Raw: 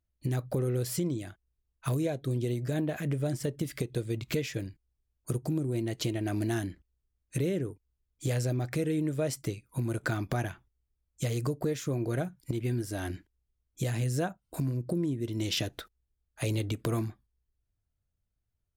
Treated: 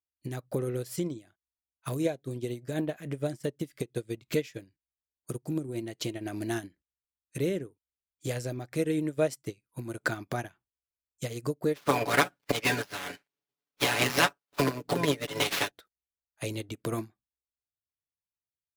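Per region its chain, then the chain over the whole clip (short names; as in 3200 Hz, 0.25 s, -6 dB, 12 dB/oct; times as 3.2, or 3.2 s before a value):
11.74–15.7 spectral limiter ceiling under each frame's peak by 28 dB + comb 7 ms, depth 80% + running maximum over 5 samples
whole clip: HPF 220 Hz 6 dB/oct; upward expander 2.5:1, over -43 dBFS; gain +8.5 dB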